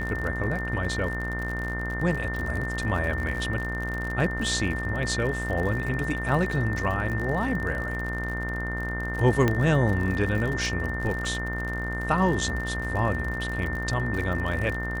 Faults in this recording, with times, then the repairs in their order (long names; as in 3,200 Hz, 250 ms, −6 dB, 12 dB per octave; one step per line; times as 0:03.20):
mains buzz 60 Hz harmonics 35 −32 dBFS
surface crackle 54 per second −31 dBFS
whistle 1,800 Hz −32 dBFS
0:09.48: click −10 dBFS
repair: click removal
hum removal 60 Hz, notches 35
notch filter 1,800 Hz, Q 30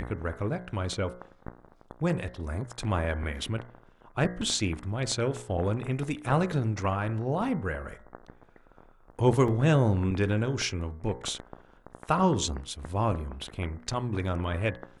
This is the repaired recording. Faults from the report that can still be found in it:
0:09.48: click